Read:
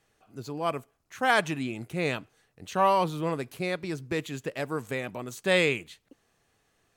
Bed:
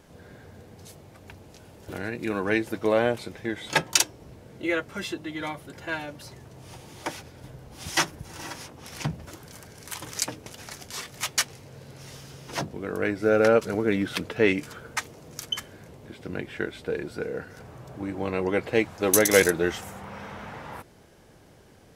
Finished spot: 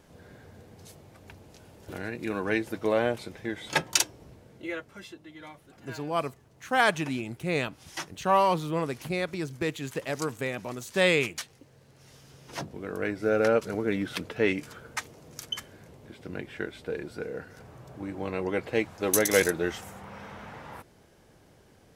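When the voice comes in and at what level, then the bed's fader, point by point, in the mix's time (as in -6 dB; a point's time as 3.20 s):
5.50 s, +0.5 dB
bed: 4.21 s -3 dB
5.12 s -13 dB
11.89 s -13 dB
12.77 s -4 dB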